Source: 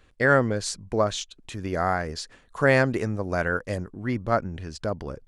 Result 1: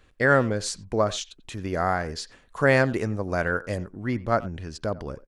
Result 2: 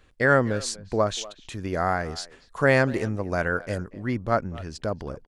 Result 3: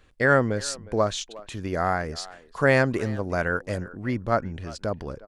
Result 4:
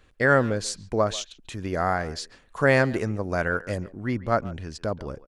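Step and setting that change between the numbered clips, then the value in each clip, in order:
speakerphone echo, time: 90 ms, 240 ms, 360 ms, 140 ms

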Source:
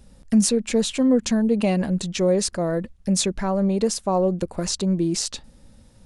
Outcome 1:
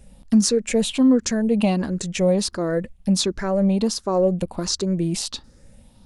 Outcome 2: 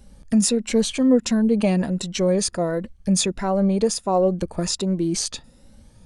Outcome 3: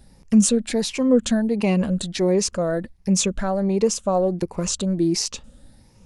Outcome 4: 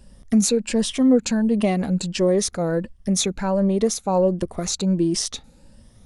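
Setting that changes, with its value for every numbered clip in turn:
drifting ripple filter, ripples per octave: 0.51, 2.1, 0.79, 1.3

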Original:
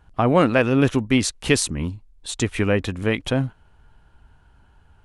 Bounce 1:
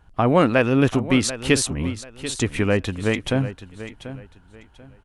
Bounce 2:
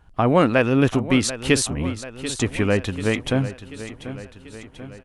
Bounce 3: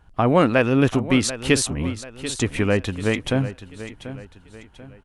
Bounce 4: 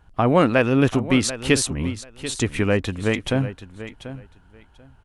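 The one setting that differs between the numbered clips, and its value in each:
feedback delay, feedback: 26%, 57%, 39%, 17%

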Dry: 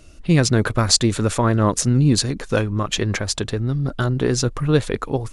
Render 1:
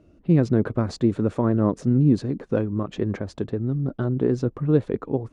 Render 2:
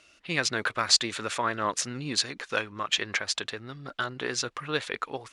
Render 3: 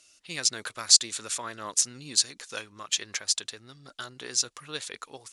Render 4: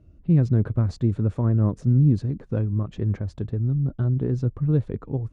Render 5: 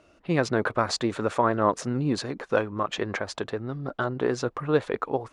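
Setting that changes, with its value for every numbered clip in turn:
band-pass filter, frequency: 270 Hz, 2.4 kHz, 6.7 kHz, 110 Hz, 840 Hz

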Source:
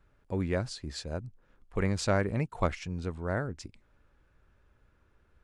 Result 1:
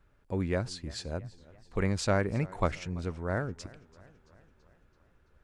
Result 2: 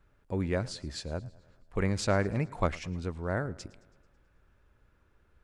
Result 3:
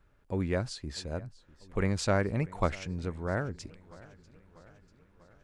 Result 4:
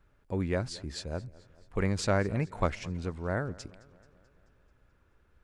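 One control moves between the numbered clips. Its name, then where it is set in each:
modulated delay, time: 335 ms, 109 ms, 645 ms, 217 ms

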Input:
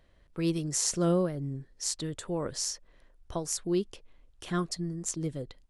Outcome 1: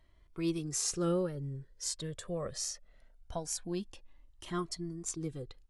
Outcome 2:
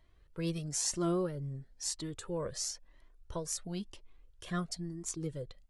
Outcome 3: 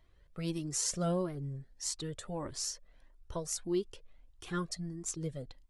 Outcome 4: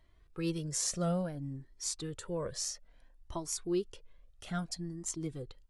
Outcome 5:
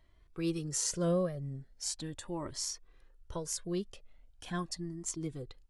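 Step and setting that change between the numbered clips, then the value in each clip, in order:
Shepard-style flanger, rate: 0.22 Hz, 1 Hz, 1.6 Hz, 0.59 Hz, 0.4 Hz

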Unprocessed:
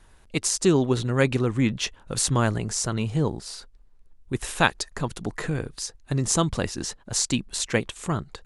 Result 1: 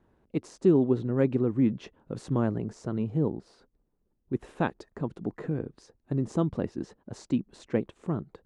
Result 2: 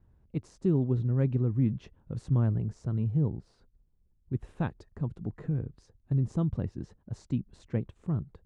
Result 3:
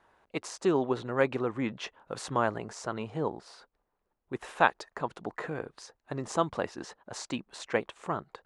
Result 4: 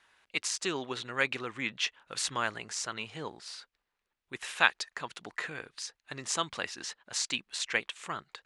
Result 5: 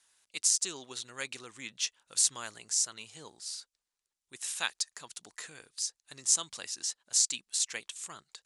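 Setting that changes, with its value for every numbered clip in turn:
band-pass filter, frequency: 280 Hz, 110 Hz, 820 Hz, 2.3 kHz, 7.2 kHz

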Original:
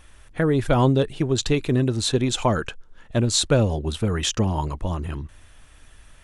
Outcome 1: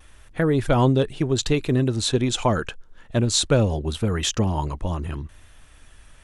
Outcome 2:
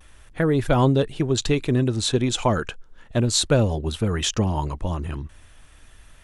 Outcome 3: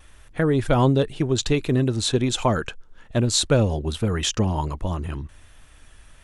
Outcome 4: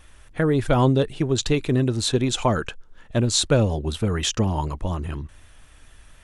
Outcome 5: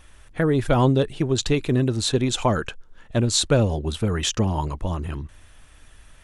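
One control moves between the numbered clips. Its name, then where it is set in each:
vibrato, rate: 0.78 Hz, 0.36 Hz, 1.3 Hz, 4.1 Hz, 15 Hz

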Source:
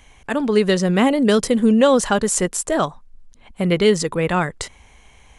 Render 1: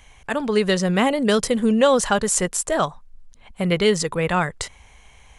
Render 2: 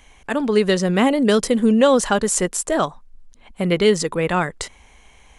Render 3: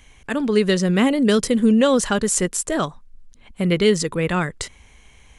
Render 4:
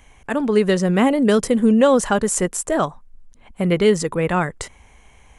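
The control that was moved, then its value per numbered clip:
peaking EQ, frequency: 290 Hz, 100 Hz, 780 Hz, 4.1 kHz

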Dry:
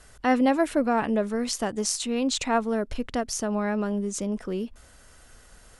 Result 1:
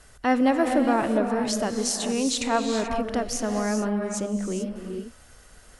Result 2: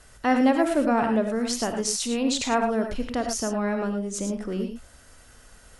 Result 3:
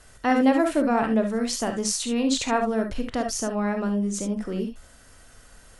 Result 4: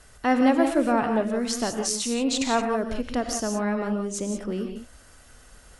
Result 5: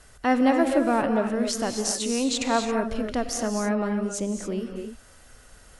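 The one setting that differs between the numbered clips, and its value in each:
gated-style reverb, gate: 460 ms, 130 ms, 90 ms, 200 ms, 300 ms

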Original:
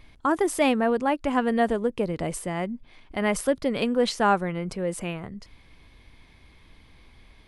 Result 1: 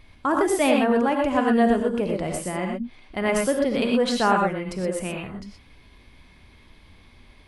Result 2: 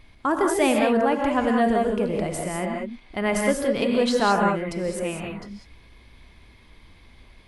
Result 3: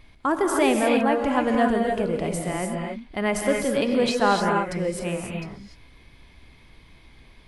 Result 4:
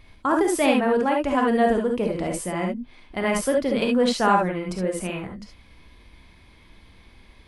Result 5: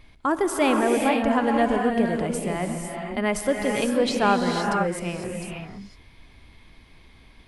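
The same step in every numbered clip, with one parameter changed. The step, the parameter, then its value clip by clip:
gated-style reverb, gate: 140 ms, 220 ms, 320 ms, 90 ms, 530 ms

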